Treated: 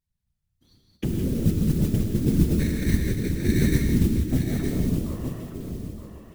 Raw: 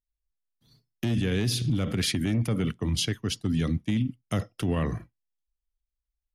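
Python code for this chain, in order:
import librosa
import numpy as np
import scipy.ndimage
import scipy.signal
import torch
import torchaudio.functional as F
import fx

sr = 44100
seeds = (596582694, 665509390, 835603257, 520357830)

p1 = fx.reverse_delay_fb(x, sr, ms=139, feedback_pct=61, wet_db=-7.5)
p2 = fx.env_lowpass_down(p1, sr, base_hz=350.0, full_db=-25.0)
p3 = fx.low_shelf(p2, sr, hz=270.0, db=4.0)
p4 = fx.level_steps(p3, sr, step_db=22)
p5 = p3 + (p4 * librosa.db_to_amplitude(-2.0))
p6 = fx.sample_hold(p5, sr, seeds[0], rate_hz=2000.0, jitter_pct=0, at=(2.59, 3.82))
p7 = fx.mod_noise(p6, sr, seeds[1], snr_db=21)
p8 = fx.whisperise(p7, sr, seeds[2])
p9 = p8 + 10.0 ** (-8.0 / 20.0) * np.pad(p8, (int(916 * sr / 1000.0), 0))[:len(p8)]
p10 = fx.rev_gated(p9, sr, seeds[3], gate_ms=200, shape='rising', drr_db=4.0)
y = p10 * librosa.db_to_amplitude(-2.5)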